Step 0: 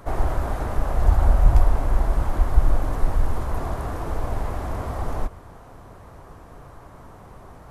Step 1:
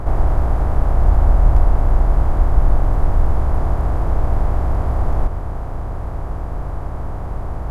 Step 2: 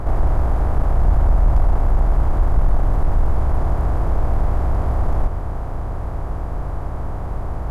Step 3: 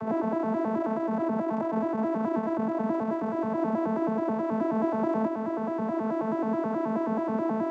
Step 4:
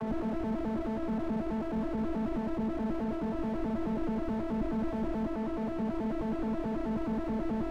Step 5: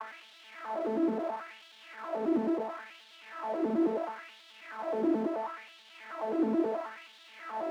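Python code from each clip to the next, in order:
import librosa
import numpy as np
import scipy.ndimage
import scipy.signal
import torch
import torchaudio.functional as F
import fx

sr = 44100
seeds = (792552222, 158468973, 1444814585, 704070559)

y1 = fx.bin_compress(x, sr, power=0.4)
y1 = fx.high_shelf(y1, sr, hz=2300.0, db=-11.0)
y2 = 10.0 ** (-6.5 / 20.0) * np.tanh(y1 / 10.0 ** (-6.5 / 20.0))
y3 = fx.vocoder_arp(y2, sr, chord='bare fifth', root=57, every_ms=107)
y3 = fx.rider(y3, sr, range_db=10, speed_s=2.0)
y3 = y3 * 10.0 ** (1.5 / 20.0)
y4 = scipy.signal.sosfilt(scipy.signal.butter(2, 1800.0, 'lowpass', fs=sr, output='sos'), y3)
y4 = fx.slew_limit(y4, sr, full_power_hz=9.7)
y5 = fx.filter_lfo_highpass(y4, sr, shape='sine', hz=0.73, low_hz=300.0, high_hz=3500.0, q=3.1)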